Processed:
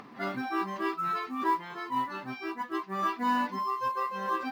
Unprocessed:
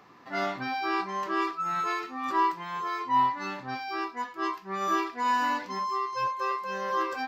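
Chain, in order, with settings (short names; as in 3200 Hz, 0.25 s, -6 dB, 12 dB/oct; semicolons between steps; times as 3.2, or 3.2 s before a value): LPF 4900 Hz 12 dB/oct; bell 230 Hz +12.5 dB 0.47 oct; upward compressor, threshold -39 dBFS; plain phase-vocoder stretch 0.62×; short-mantissa float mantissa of 4-bit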